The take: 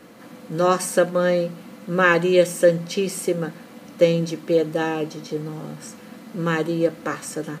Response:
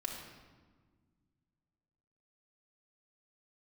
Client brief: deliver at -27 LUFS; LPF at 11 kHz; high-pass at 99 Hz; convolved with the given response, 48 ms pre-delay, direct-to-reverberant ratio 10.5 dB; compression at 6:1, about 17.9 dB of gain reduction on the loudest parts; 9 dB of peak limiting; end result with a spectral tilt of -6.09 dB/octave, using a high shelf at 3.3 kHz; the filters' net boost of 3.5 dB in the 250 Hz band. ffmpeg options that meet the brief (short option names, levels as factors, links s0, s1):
-filter_complex "[0:a]highpass=99,lowpass=11000,equalizer=f=250:t=o:g=6.5,highshelf=f=3300:g=-8,acompressor=threshold=0.0355:ratio=6,alimiter=level_in=1.26:limit=0.0631:level=0:latency=1,volume=0.794,asplit=2[s0][s1];[1:a]atrim=start_sample=2205,adelay=48[s2];[s1][s2]afir=irnorm=-1:irlink=0,volume=0.266[s3];[s0][s3]amix=inputs=2:normalize=0,volume=2.66"